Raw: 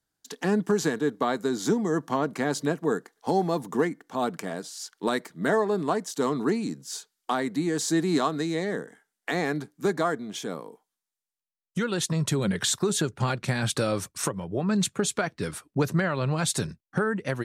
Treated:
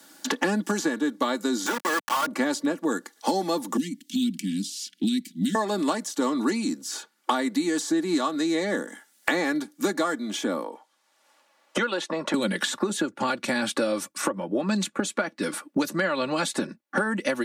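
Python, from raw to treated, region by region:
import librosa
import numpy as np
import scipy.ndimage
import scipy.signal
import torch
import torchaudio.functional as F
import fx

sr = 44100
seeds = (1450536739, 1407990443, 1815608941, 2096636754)

y = fx.chain(x, sr, fx.highpass(hz=1000.0, slope=12),
    fx.quant_companded(bits=2), at=(1.66, 2.27))
y = fx.chain(y, sr, fx.ellip_bandstop(low_hz=240.0, high_hz=2800.0, order=3, stop_db=70),
    fx.bass_treble(bass_db=7, treble_db=-4), at=(3.77, 5.55))
y = fx.chain(y, sr, fx.bandpass_q(hz=680.0, q=1.0),
    fx.tilt_shelf(db=-4.0, hz=780.0),
    fx.band_squash(depth_pct=40), at=(10.64, 12.34))
y = scipy.signal.sosfilt(scipy.signal.butter(4, 190.0, 'highpass', fs=sr, output='sos'), y)
y = y + 0.65 * np.pad(y, (int(3.5 * sr / 1000.0), 0))[:len(y)]
y = fx.band_squash(y, sr, depth_pct=100)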